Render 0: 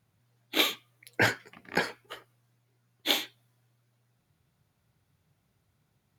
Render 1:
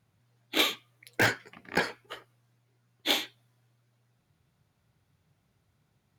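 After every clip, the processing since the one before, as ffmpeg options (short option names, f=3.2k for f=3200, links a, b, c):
-filter_complex "[0:a]highshelf=f=11k:g=-7.5,asplit=2[a][b];[b]aeval=exprs='(mod(6.31*val(0)+1,2)-1)/6.31':c=same,volume=-9dB[c];[a][c]amix=inputs=2:normalize=0,volume=-1.5dB"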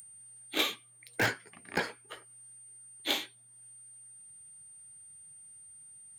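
-filter_complex "[0:a]aeval=exprs='val(0)+0.00224*sin(2*PI*8800*n/s)':c=same,acrossover=split=1500[a][b];[b]acompressor=mode=upward:threshold=-42dB:ratio=2.5[c];[a][c]amix=inputs=2:normalize=0,volume=-4dB"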